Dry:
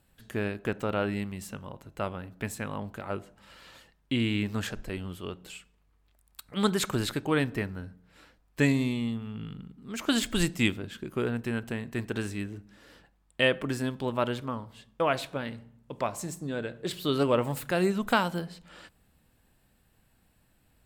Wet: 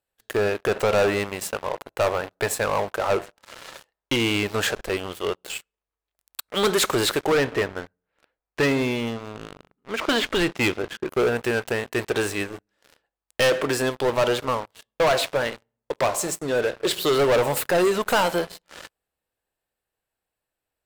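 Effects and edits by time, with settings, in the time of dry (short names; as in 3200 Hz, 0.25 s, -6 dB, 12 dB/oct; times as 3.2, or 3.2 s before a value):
0.71–4.14 bell 820 Hz +4.5 dB 2.4 oct
7.32–11.09 LPF 2800 Hz
whole clip: resonant low shelf 310 Hz -11 dB, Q 1.5; sample leveller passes 5; gain -5 dB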